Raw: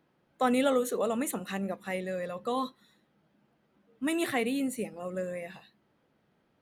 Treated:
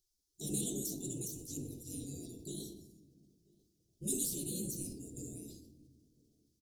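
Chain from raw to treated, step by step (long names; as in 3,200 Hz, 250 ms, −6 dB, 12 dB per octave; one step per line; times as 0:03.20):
gate on every frequency bin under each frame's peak −20 dB weak
Chebyshev band-stop filter 340–5,800 Hz, order 3
high-shelf EQ 7,200 Hz −7 dB
slap from a distant wall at 170 metres, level −26 dB
on a send at −8.5 dB: convolution reverb RT60 1.3 s, pre-delay 6 ms
on the sum: level that may fall only so fast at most 55 dB per second
level +13 dB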